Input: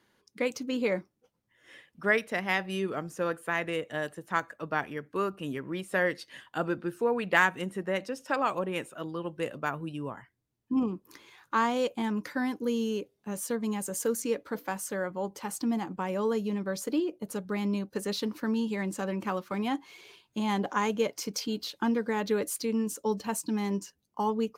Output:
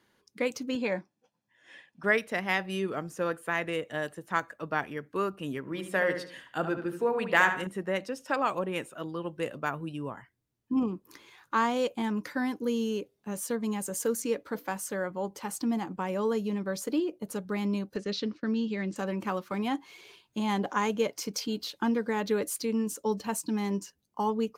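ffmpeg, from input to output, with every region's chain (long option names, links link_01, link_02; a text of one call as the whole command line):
ffmpeg -i in.wav -filter_complex "[0:a]asettb=1/sr,asplit=3[link_01][link_02][link_03];[link_01]atrim=end=0.754[link_04];[link_02]atrim=start=0.75:end=2.04,asetpts=PTS-STARTPTS,afade=type=in:duration=0.004:curve=qsin,afade=type=out:start_time=1.286:duration=0.004:curve=qsin,highpass=180,lowpass=7300,aecho=1:1:1.2:0.44,atrim=end_sample=56889[link_05];[link_03]atrim=start=2.036[link_06];[link_04][link_05]acrossfade=duration=0.004:curve1=hsin:curve2=qsin[link_07];[link_07][link_06]acrossfade=duration=0.004:curve1=qsin:curve2=hsin,asettb=1/sr,asplit=3[link_08][link_09][link_10];[link_08]atrim=end=5.604[link_11];[link_09]atrim=start=5.6:end=7.67,asetpts=PTS-STARTPTS,afade=type=in:duration=0.004:curve=qsin,afade=type=out:start_time=2.066:duration=0.004:curve=qsin,bandreject=frequency=60:width_type=h:width=6,bandreject=frequency=120:width_type=h:width=6,bandreject=frequency=180:width_type=h:width=6,bandreject=frequency=240:width_type=h:width=6,bandreject=frequency=300:width_type=h:width=6,bandreject=frequency=360:width_type=h:width=6,bandreject=frequency=420:width_type=h:width=6,asplit=2[link_12][link_13];[link_13]adelay=73,lowpass=frequency=3500:poles=1,volume=-8dB,asplit=2[link_14][link_15];[link_15]adelay=73,lowpass=frequency=3500:poles=1,volume=0.39,asplit=2[link_16][link_17];[link_17]adelay=73,lowpass=frequency=3500:poles=1,volume=0.39,asplit=2[link_18][link_19];[link_19]adelay=73,lowpass=frequency=3500:poles=1,volume=0.39[link_20];[link_12][link_14][link_16][link_18][link_20]amix=inputs=5:normalize=0,atrim=end_sample=91287[link_21];[link_10]atrim=start=7.666[link_22];[link_11][link_21]acrossfade=duration=0.004:curve1=hsin:curve2=qsin[link_23];[link_23][link_22]acrossfade=duration=0.004:curve1=qsin:curve2=hsin,asettb=1/sr,asplit=3[link_24][link_25][link_26];[link_24]atrim=end=17.964[link_27];[link_25]atrim=start=17.96:end=18.96,asetpts=PTS-STARTPTS,afade=type=in:duration=0.004:curve=qsin,afade=type=out:start_time=0.996:duration=0.004:curve=qsin,lowpass=frequency=5800:width=0.5412,lowpass=frequency=5800:width=1.3066,agate=range=-33dB:threshold=-40dB:ratio=3:release=100:detection=peak,equalizer=frequency=920:width_type=o:width=0.58:gain=-11[link_28];[link_26]atrim=start=18.956[link_29];[link_27][link_28]acrossfade=duration=0.004:curve1=hsin:curve2=qsin[link_30];[link_30][link_29]acrossfade=duration=0.004:curve1=qsin:curve2=hsin" out.wav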